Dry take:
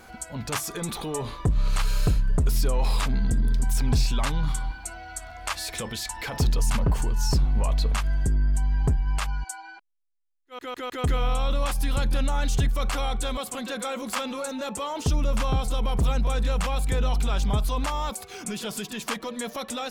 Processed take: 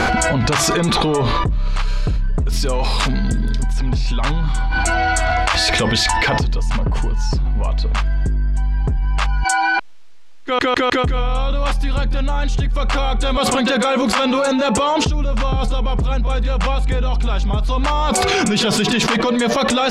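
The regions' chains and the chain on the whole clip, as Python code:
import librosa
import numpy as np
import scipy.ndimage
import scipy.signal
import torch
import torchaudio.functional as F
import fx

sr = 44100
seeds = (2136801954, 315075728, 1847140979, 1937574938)

y = fx.chain(x, sr, fx.highpass(hz=66.0, slope=6),
    fx.high_shelf(hz=4700.0, db=10.5), at=(2.52, 3.63))
y = scipy.signal.sosfilt(scipy.signal.butter(2, 4700.0, 'lowpass', fs=sr, output='sos'), y)
y = fx.env_flatten(y, sr, amount_pct=100)
y = y * 10.0 ** (1.5 / 20.0)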